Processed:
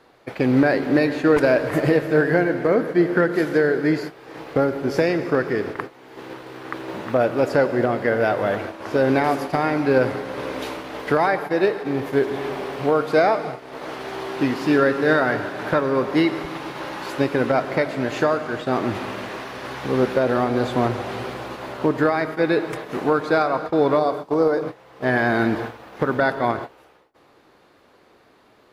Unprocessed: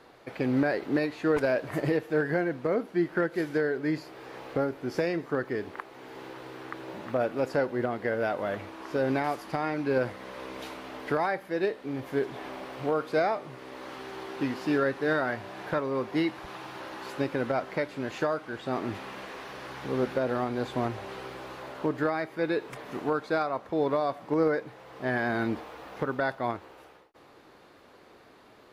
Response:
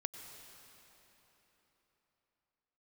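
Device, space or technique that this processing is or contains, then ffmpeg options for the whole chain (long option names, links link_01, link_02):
keyed gated reverb: -filter_complex "[0:a]asettb=1/sr,asplit=3[link_01][link_02][link_03];[link_01]atrim=end=23.994[link_04];[link_02]atrim=start=23.99:end=24.62,asetpts=PTS-STARTPTS,afade=type=in:duration=0.004:curve=qsin,afade=type=out:start_time=0.626:duration=0.004:curve=qsin,equalizer=frequency=125:width_type=o:width=1:gain=-5,equalizer=frequency=250:width_type=o:width=1:gain=-5,equalizer=frequency=2000:width_type=o:width=1:gain=-11[link_05];[link_03]atrim=start=24.616[link_06];[link_04][link_05]acrossfade=duration=0.004:curve1=hsin:curve2=qsin[link_07];[link_07][link_06]acrossfade=duration=0.004:curve1=qsin:curve2=hsin,asplit=3[link_08][link_09][link_10];[1:a]atrim=start_sample=2205[link_11];[link_09][link_11]afir=irnorm=-1:irlink=0[link_12];[link_10]apad=whole_len=1266714[link_13];[link_12][link_13]sidechaingate=range=-39dB:threshold=-41dB:ratio=16:detection=peak,volume=7dB[link_14];[link_08][link_14]amix=inputs=2:normalize=0"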